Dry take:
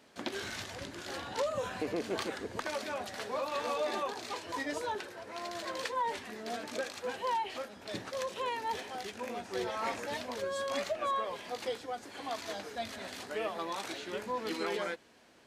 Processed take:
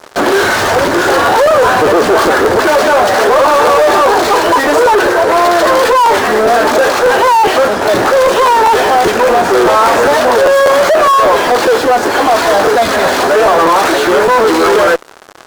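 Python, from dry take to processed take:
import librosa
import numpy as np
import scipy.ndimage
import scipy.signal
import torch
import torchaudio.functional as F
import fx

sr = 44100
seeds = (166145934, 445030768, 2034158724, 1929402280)

y = scipy.signal.sosfilt(scipy.signal.butter(2, 8100.0, 'lowpass', fs=sr, output='sos'), x)
y = fx.fuzz(y, sr, gain_db=54.0, gate_db=-56.0)
y = fx.band_shelf(y, sr, hz=730.0, db=10.0, octaves=2.6)
y = fx.buffer_crackle(y, sr, first_s=0.65, period_s=0.2, block=512, kind='repeat')
y = y * 10.0 ** (-2.5 / 20.0)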